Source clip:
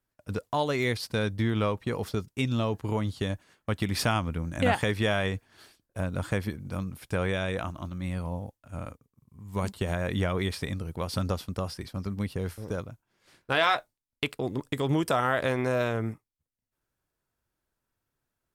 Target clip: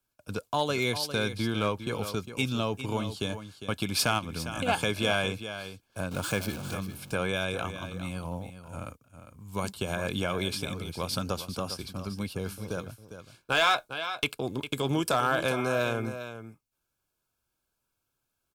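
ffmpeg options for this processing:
ffmpeg -i in.wav -filter_complex "[0:a]asettb=1/sr,asplit=3[link_01][link_02][link_03];[link_01]atrim=end=6.114[link_04];[link_02]atrim=start=6.11:end=6.75,asetpts=PTS-STARTPTS,afade=type=in:duration=0.004:curve=qsin,afade=type=out:start_time=0.636:duration=0.004:curve=qsin,aeval=exprs='val(0)+0.5*0.0178*sgn(val(0))':channel_layout=same[link_05];[link_03]atrim=start=6.746[link_06];[link_04][link_05]acrossfade=duration=0.004:curve1=hsin:curve2=qsin[link_07];[link_07][link_06]acrossfade=duration=0.004:curve1=qsin:curve2=hsin,acrossover=split=120|3000[link_08][link_09][link_10];[link_08]acompressor=threshold=-41dB:ratio=6[link_11];[link_11][link_09][link_10]amix=inputs=3:normalize=0,aecho=1:1:404:0.282,asplit=3[link_12][link_13][link_14];[link_12]afade=type=out:start_time=4.18:duration=0.02[link_15];[link_13]acompressor=threshold=-28dB:ratio=6,afade=type=in:start_time=4.18:duration=0.02,afade=type=out:start_time=4.67:duration=0.02[link_16];[link_14]afade=type=in:start_time=4.67:duration=0.02[link_17];[link_15][link_16][link_17]amix=inputs=3:normalize=0,asuperstop=centerf=1900:order=12:qfactor=5,tiltshelf=frequency=1500:gain=-3.5,asoftclip=type=hard:threshold=-17.5dB,volume=1.5dB" out.wav

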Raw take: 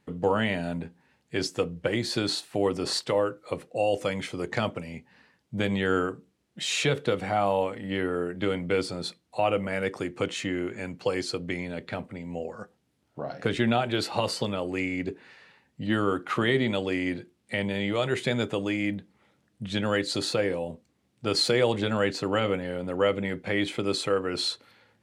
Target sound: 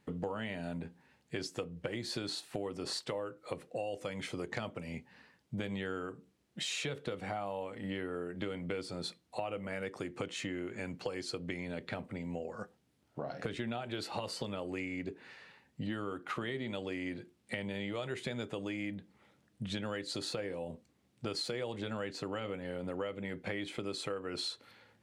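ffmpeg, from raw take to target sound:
ffmpeg -i in.wav -af "acompressor=threshold=-34dB:ratio=6,volume=-1.5dB" out.wav

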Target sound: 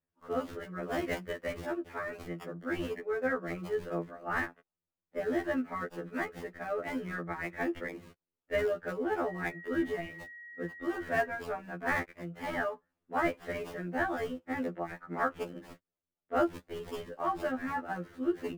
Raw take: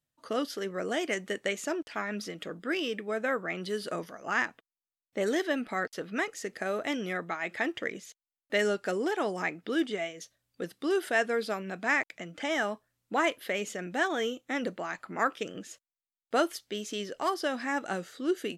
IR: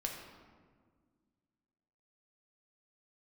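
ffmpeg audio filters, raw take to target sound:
-filter_complex "[0:a]asettb=1/sr,asplit=3[link_01][link_02][link_03];[link_01]atrim=end=0.824[link_04];[link_02]atrim=start=0.82:end=1.38,asetpts=PTS-STARTPTS,afade=type=in:duration=0.004:curve=qsin,afade=type=out:start_time=0.556:duration=0.004:curve=qsin,highshelf=frequency=4300:gain=9[link_05];[link_03]atrim=start=1.376[link_06];[link_04][link_05]acrossfade=duration=0.004:curve1=hsin:curve2=qsin[link_07];[link_07][link_06]acrossfade=duration=0.004:curve1=qsin:curve2=hsin,acrossover=split=270|930|2300[link_08][link_09][link_10][link_11];[link_11]acrusher=samples=42:mix=1:aa=0.000001:lfo=1:lforange=42:lforate=4[link_12];[link_08][link_09][link_10][link_12]amix=inputs=4:normalize=0,asettb=1/sr,asplit=3[link_13][link_14][link_15];[link_13]atrim=end=9.274[link_16];[link_14]atrim=start=9.27:end=11.27,asetpts=PTS-STARTPTS,afade=type=in:duration=0.004:curve=qsin,afade=type=out:start_time=1.996:duration=0.004:curve=qsin,aeval=exprs='val(0)+0.00355*sin(2*PI*1900*n/s)':channel_layout=same[link_17];[link_15]atrim=start=11.266[link_18];[link_16][link_17]acrossfade=duration=0.004:curve1=hsin:curve2=qsin[link_19];[link_19][link_18]acrossfade=duration=0.004:curve1=qsin:curve2=hsin,afftfilt=real='re*2*eq(mod(b,4),0)':imag='im*2*eq(mod(b,4),0)':win_size=2048:overlap=0.75"

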